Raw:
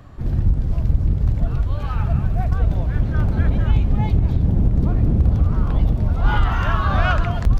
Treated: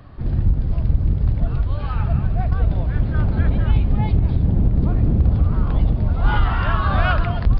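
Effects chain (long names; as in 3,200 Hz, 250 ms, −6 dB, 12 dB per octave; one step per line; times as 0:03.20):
downsampling to 11,025 Hz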